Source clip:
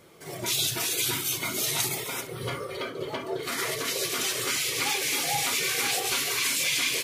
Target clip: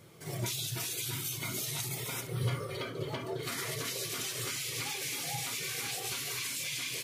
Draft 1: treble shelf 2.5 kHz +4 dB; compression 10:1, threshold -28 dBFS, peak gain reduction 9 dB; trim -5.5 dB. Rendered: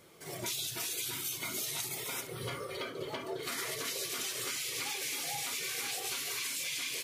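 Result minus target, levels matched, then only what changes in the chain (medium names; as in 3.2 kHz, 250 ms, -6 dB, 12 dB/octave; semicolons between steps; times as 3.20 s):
125 Hz band -11.5 dB
add after compression: peaking EQ 120 Hz +13 dB 1.2 oct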